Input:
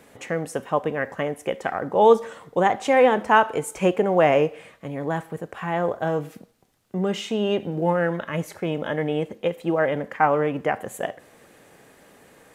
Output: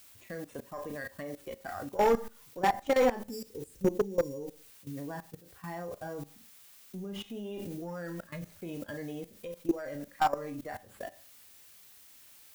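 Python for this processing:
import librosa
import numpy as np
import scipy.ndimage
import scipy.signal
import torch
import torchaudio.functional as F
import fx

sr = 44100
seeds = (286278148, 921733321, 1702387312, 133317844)

p1 = fx.bin_expand(x, sr, power=1.5)
p2 = fx.sample_hold(p1, sr, seeds[0], rate_hz=6300.0, jitter_pct=0)
p3 = p1 + (p2 * librosa.db_to_amplitude(-3.5))
p4 = fx.spec_erase(p3, sr, start_s=3.17, length_s=1.8, low_hz=550.0, high_hz=4600.0)
p5 = fx.tube_stage(p4, sr, drive_db=5.0, bias=0.4)
p6 = fx.peak_eq(p5, sr, hz=150.0, db=-10.5, octaves=0.53)
p7 = fx.dmg_noise_colour(p6, sr, seeds[1], colour='blue', level_db=-43.0)
p8 = fx.bass_treble(p7, sr, bass_db=7, treble_db=-5)
p9 = fx.room_early_taps(p8, sr, ms=(21, 35), db=(-13.0, -8.0))
p10 = fx.rev_schroeder(p9, sr, rt60_s=0.38, comb_ms=30, drr_db=13.0)
p11 = fx.level_steps(p10, sr, step_db=17)
p12 = 10.0 ** (-12.5 / 20.0) * (np.abs((p11 / 10.0 ** (-12.5 / 20.0) + 3.0) % 4.0 - 2.0) - 1.0)
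y = p12 * librosa.db_to_amplitude(-5.0)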